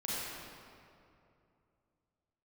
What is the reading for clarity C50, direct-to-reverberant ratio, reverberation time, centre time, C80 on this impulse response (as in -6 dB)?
-5.5 dB, -8.5 dB, 2.6 s, 174 ms, -3.0 dB